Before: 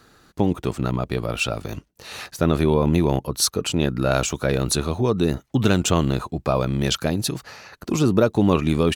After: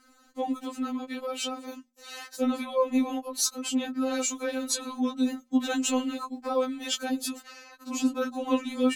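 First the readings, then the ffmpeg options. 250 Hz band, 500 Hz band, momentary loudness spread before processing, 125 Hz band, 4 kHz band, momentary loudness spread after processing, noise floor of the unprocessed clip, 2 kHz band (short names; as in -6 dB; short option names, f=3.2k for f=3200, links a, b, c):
-6.0 dB, -9.0 dB, 11 LU, under -35 dB, -6.5 dB, 14 LU, -57 dBFS, -8.0 dB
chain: -af "equalizer=f=7.1k:w=6:g=7,bandreject=f=60:t=h:w=6,bandreject=f=120:t=h:w=6,bandreject=f=180:t=h:w=6,bandreject=f=240:t=h:w=6,bandreject=f=300:t=h:w=6,bandreject=f=360:t=h:w=6,bandreject=f=420:t=h:w=6,bandreject=f=480:t=h:w=6,bandreject=f=540:t=h:w=6,afftfilt=real='re*3.46*eq(mod(b,12),0)':imag='im*3.46*eq(mod(b,12),0)':win_size=2048:overlap=0.75,volume=-4dB"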